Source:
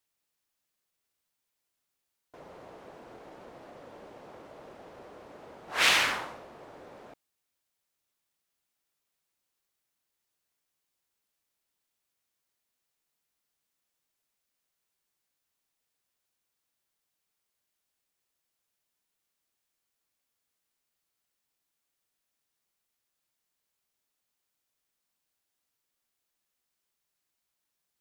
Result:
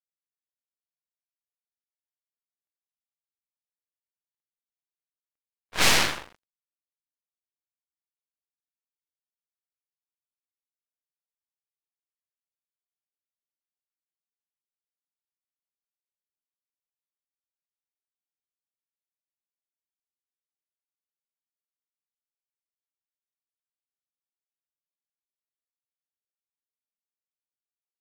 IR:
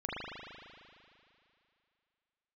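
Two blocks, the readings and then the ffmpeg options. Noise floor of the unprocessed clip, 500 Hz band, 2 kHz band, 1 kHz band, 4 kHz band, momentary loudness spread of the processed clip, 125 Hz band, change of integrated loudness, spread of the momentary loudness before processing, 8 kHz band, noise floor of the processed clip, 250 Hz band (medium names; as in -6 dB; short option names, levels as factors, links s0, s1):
-83 dBFS, +2.5 dB, +0.5 dB, +1.5 dB, +2.5 dB, 17 LU, +11.0 dB, +3.5 dB, 16 LU, +7.0 dB, under -85 dBFS, +6.5 dB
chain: -af "aeval=exprs='0.355*(cos(1*acos(clip(val(0)/0.355,-1,1)))-cos(1*PI/2))+0.01*(cos(3*acos(clip(val(0)/0.355,-1,1)))-cos(3*PI/2))+0.126*(cos(4*acos(clip(val(0)/0.355,-1,1)))-cos(4*PI/2))+0.0501*(cos(8*acos(clip(val(0)/0.355,-1,1)))-cos(8*PI/2))':c=same,aeval=exprs='sgn(val(0))*max(abs(val(0))-0.0119,0)':c=same,agate=range=0.0224:threshold=0.00251:ratio=3:detection=peak"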